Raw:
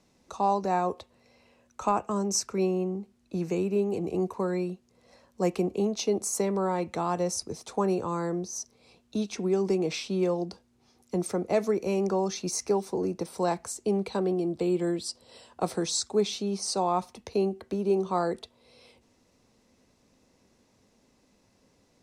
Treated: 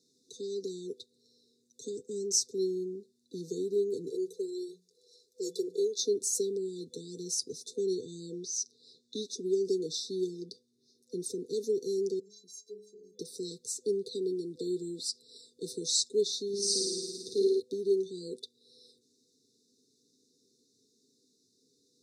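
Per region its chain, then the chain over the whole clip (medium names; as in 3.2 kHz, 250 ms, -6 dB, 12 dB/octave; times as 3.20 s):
4.11–5.98 s: peaking EQ 130 Hz -13 dB 1.3 oct + hum notches 60/120/180 Hz + comb 2 ms, depth 84%
7.76–9.22 s: low-pass 8.5 kHz + peaking EQ 2.7 kHz +5.5 dB 2.2 oct
10.43–11.24 s: treble shelf 7 kHz -4.5 dB + band-stop 7.3 kHz, Q 9.7
12.19–13.19 s: inharmonic resonator 200 Hz, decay 0.42 s, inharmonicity 0.03 + compression 1.5:1, threshold -51 dBFS
16.48–17.60 s: hum notches 60/120/180/240/300/360/420/480 Hz + flutter echo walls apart 9.4 m, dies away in 1.5 s
whole clip: frequency weighting A; FFT band-reject 500–3500 Hz; comb 7.5 ms, depth 48%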